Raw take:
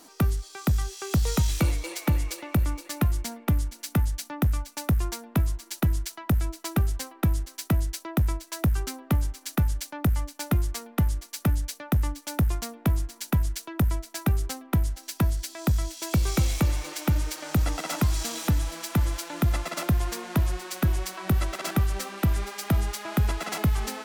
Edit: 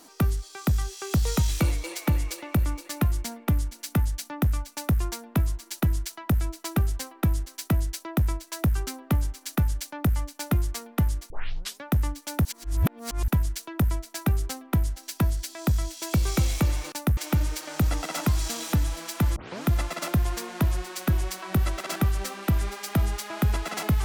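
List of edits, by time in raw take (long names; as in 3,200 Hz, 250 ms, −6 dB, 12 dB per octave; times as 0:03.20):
0:04.74–0:04.99: duplicate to 0:16.92
0:11.30: tape start 0.53 s
0:12.45–0:13.28: reverse
0:19.11: tape start 0.29 s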